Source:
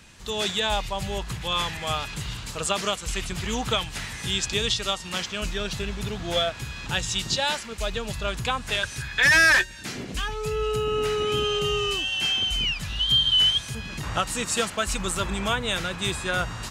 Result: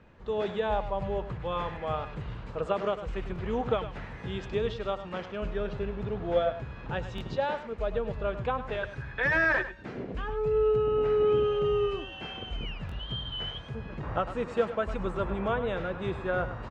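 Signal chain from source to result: LPF 1400 Hz 12 dB/oct; bell 490 Hz +7 dB 0.91 oct; on a send: echo 0.102 s -12 dB; on the sum: stuck buffer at 3.34/7.16/12.87, samples 1024, times 1; gain -4 dB

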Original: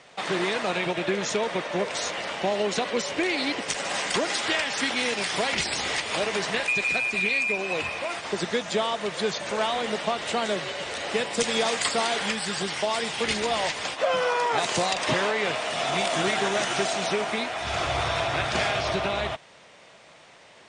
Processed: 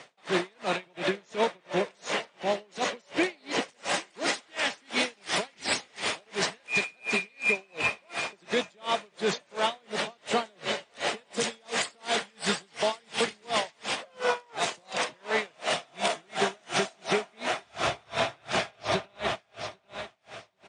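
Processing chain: HPF 120 Hz 12 dB/oct; limiter -20 dBFS, peak gain reduction 10 dB; on a send: feedback echo 0.795 s, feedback 40%, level -10.5 dB; on the sum: dB-linear tremolo 2.8 Hz, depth 37 dB; gain +5 dB

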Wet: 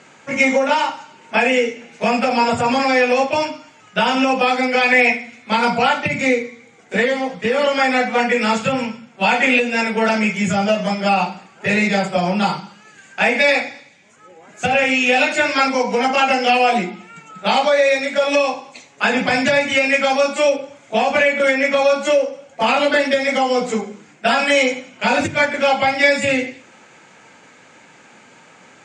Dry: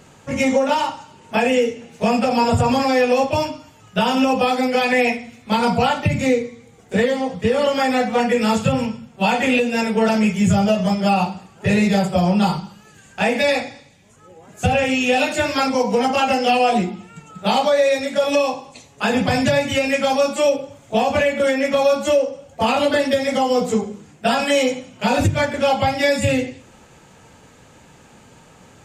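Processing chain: speaker cabinet 240–7900 Hz, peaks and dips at 440 Hz -3 dB, 1500 Hz +5 dB, 2200 Hz +8 dB; gain +1.5 dB

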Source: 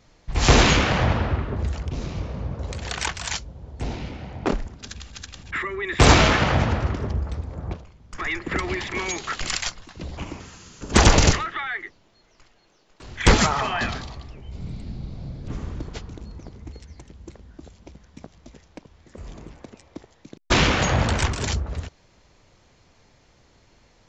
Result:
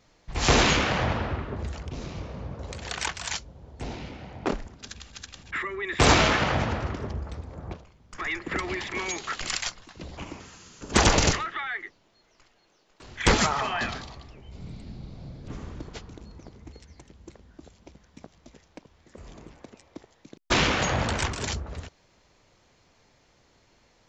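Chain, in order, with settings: low shelf 160 Hz -6 dB; gain -3 dB

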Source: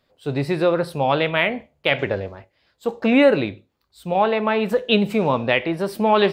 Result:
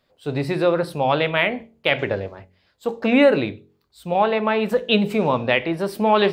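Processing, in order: de-hum 45.59 Hz, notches 10

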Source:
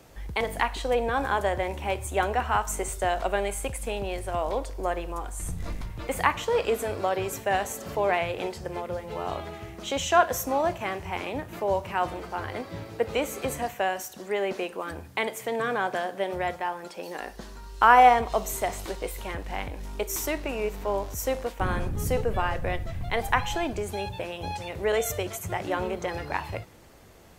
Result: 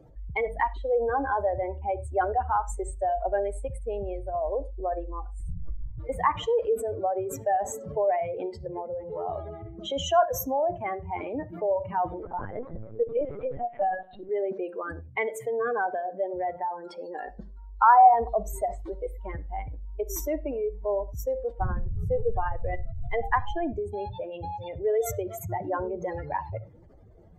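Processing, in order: spectral contrast raised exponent 2.4; notch 2600 Hz, Q 9; reverb, pre-delay 6 ms, DRR 14.5 dB; 12.23–14.29 LPC vocoder at 8 kHz pitch kept

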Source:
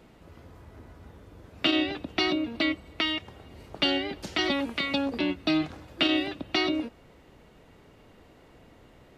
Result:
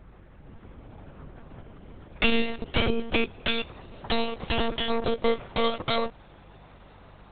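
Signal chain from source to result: speed glide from 51% -> 200%; monotone LPC vocoder at 8 kHz 230 Hz; buzz 50 Hz, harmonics 4, -58 dBFS; gain +3 dB

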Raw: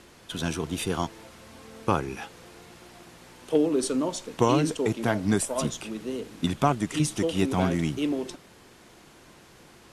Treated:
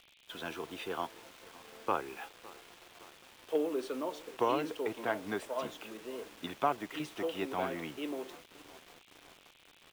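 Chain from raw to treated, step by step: three-band isolator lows -19 dB, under 340 Hz, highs -23 dB, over 3700 Hz; on a send: feedback echo 0.562 s, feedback 58%, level -21 dB; on the sum: bit-crush 8-bit; band noise 2200–3700 Hz -60 dBFS; gain -5.5 dB

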